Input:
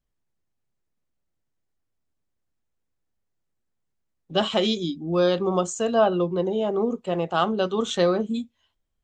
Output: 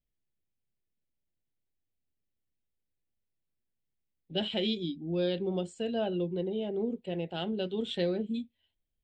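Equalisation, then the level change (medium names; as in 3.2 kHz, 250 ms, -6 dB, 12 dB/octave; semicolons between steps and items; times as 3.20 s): static phaser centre 2.8 kHz, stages 4; dynamic bell 700 Hz, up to -4 dB, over -35 dBFS, Q 1.6; -6.0 dB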